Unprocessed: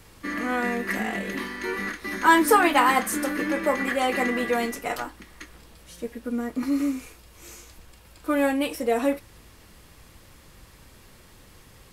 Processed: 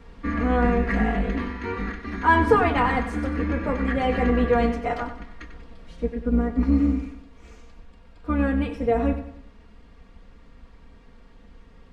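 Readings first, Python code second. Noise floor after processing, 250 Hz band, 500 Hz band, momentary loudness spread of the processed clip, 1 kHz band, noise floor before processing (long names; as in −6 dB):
−50 dBFS, +3.0 dB, +1.5 dB, 12 LU, −1.0 dB, −52 dBFS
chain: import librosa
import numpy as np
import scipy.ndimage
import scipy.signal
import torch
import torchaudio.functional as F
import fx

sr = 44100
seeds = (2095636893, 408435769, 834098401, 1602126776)

y = fx.octave_divider(x, sr, octaves=2, level_db=2.0)
y = y + 0.65 * np.pad(y, (int(4.3 * sr / 1000.0), 0))[:len(y)]
y = fx.rider(y, sr, range_db=4, speed_s=2.0)
y = fx.spacing_loss(y, sr, db_at_10k=28)
y = fx.echo_feedback(y, sr, ms=94, feedback_pct=43, wet_db=-11.0)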